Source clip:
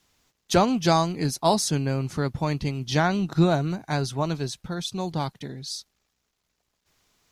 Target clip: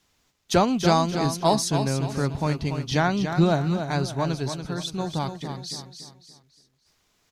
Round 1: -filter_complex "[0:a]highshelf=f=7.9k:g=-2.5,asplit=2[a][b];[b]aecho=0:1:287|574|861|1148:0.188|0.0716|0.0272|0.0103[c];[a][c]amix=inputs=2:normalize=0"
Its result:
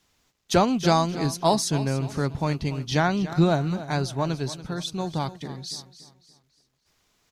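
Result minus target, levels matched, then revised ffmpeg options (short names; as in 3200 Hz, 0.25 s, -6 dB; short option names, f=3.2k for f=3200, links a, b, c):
echo-to-direct -6.5 dB
-filter_complex "[0:a]highshelf=f=7.9k:g=-2.5,asplit=2[a][b];[b]aecho=0:1:287|574|861|1148:0.398|0.151|0.0575|0.0218[c];[a][c]amix=inputs=2:normalize=0"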